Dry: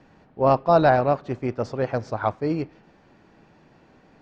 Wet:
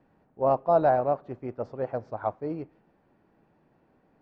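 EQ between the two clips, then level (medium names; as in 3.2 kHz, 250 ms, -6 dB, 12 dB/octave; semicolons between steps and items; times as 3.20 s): low-pass 1 kHz 6 dB/octave; bass shelf 250 Hz -4 dB; dynamic bell 670 Hz, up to +6 dB, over -32 dBFS, Q 1; -7.5 dB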